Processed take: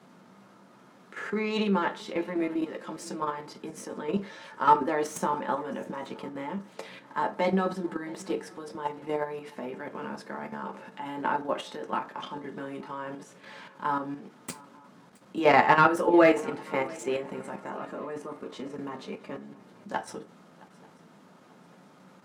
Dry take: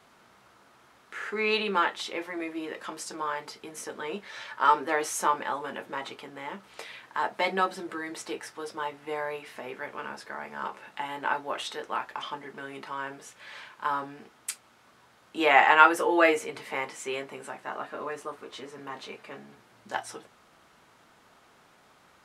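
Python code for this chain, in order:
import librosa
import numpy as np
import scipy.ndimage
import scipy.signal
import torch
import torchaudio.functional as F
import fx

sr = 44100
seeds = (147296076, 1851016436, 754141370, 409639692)

y = fx.tracing_dist(x, sr, depth_ms=0.039)
y = scipy.signal.sosfilt(scipy.signal.butter(4, 180.0, 'highpass', fs=sr, output='sos'), y)
y = fx.tilt_eq(y, sr, slope=-3.5)
y = fx.level_steps(y, sr, step_db=10)
y = fx.bass_treble(y, sr, bass_db=7, treble_db=8)
y = fx.echo_swing(y, sr, ms=890, ratio=3, feedback_pct=37, wet_db=-23)
y = fx.rev_fdn(y, sr, rt60_s=0.39, lf_ratio=0.75, hf_ratio=0.6, size_ms=33.0, drr_db=7.5)
y = y * 10.0 ** (2.0 / 20.0)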